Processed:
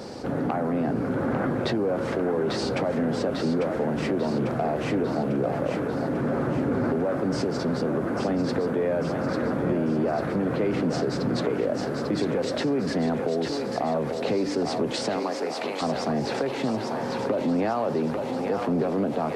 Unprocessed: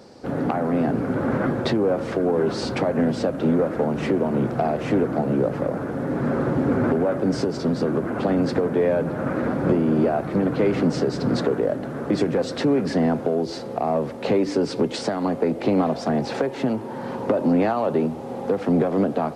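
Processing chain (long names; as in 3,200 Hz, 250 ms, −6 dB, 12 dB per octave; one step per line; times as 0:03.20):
0:15.19–0:15.81: high-pass filter 390 Hz → 1,200 Hz 12 dB per octave
feedback echo with a high-pass in the loop 846 ms, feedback 60%, high-pass 640 Hz, level −5 dB
envelope flattener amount 50%
level −6.5 dB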